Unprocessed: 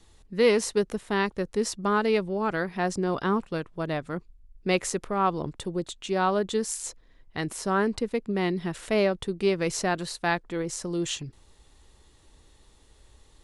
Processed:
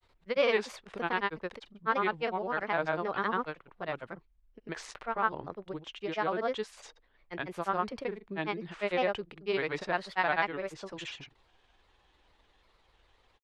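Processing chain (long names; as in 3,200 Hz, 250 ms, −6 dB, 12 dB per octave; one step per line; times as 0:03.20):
granular cloud 100 ms, grains 20 per second, pitch spread up and down by 3 semitones
three-way crossover with the lows and the highs turned down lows −12 dB, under 540 Hz, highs −23 dB, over 3,800 Hz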